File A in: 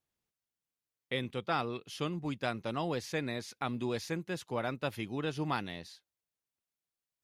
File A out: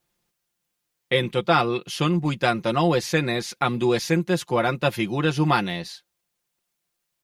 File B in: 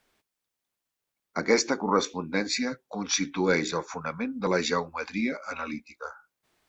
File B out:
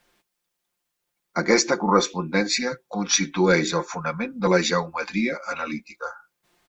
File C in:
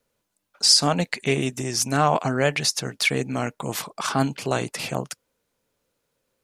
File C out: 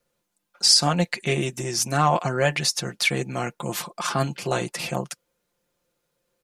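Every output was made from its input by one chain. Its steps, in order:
comb 5.7 ms, depth 62%; match loudness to -23 LUFS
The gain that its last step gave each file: +12.0, +4.0, -1.5 dB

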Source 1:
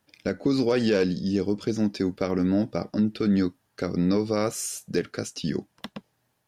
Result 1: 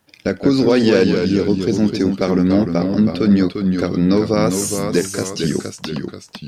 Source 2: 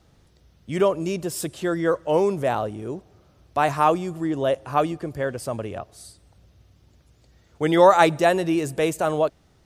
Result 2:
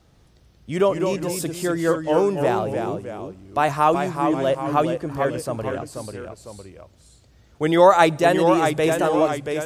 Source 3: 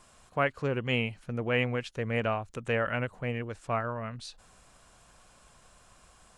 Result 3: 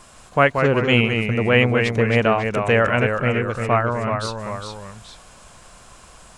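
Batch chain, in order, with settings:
echoes that change speed 0.158 s, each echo -1 st, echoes 2, each echo -6 dB; normalise peaks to -2 dBFS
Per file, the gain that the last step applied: +8.0, +1.0, +11.5 dB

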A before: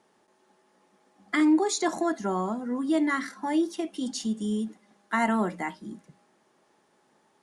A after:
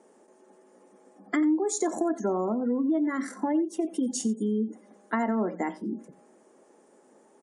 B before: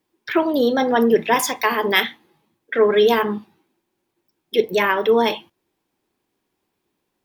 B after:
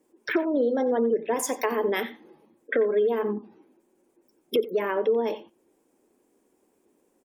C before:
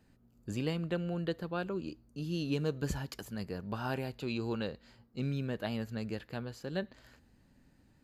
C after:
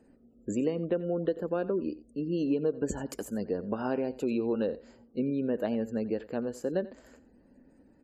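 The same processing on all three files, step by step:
spectral gate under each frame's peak -30 dB strong; graphic EQ 125/250/500/4000/8000 Hz -8/+9/+11/-9/+12 dB; compressor 4:1, threshold -25 dBFS; on a send: echo 89 ms -17.5 dB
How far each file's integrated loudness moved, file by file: -1.0, -7.5, +5.5 LU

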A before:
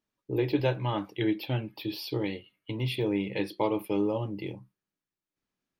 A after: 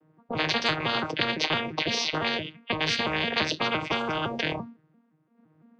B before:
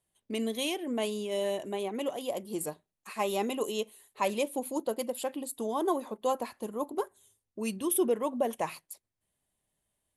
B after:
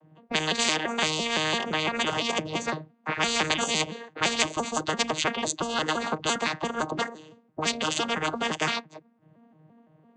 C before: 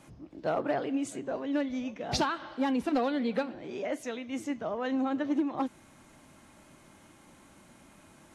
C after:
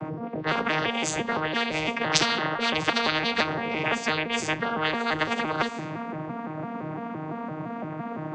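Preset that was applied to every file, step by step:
arpeggiated vocoder bare fifth, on D#3, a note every 0.17 s; low-pass opened by the level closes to 1300 Hz, open at -29 dBFS; spectral compressor 10:1; match loudness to -27 LUFS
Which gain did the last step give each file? +2.0, +7.5, +13.5 dB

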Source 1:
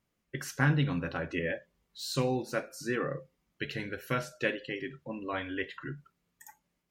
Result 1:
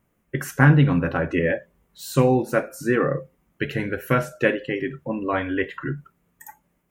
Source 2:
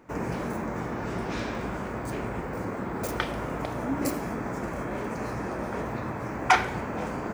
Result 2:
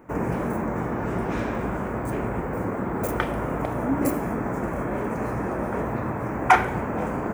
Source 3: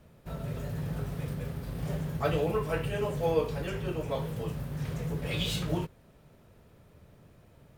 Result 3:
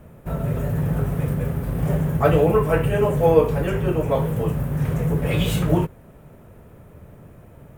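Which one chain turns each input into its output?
bell 4500 Hz -14.5 dB 1.3 oct; normalise peaks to -2 dBFS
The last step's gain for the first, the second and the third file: +12.0, +5.5, +12.0 dB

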